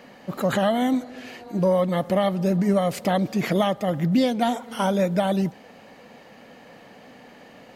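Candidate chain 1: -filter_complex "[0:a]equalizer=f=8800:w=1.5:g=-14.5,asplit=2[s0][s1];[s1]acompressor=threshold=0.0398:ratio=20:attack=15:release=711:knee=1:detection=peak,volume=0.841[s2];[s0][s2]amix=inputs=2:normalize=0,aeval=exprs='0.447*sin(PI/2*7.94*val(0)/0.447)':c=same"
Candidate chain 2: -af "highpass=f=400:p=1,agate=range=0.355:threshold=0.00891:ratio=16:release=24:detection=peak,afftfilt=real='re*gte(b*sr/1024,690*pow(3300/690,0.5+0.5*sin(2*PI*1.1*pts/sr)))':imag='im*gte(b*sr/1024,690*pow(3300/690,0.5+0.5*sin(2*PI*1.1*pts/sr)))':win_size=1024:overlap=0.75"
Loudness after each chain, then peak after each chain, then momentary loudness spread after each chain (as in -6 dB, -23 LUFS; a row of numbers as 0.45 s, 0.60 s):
-11.5 LUFS, -35.0 LUFS; -7.0 dBFS, -15.5 dBFS; 11 LU, 18 LU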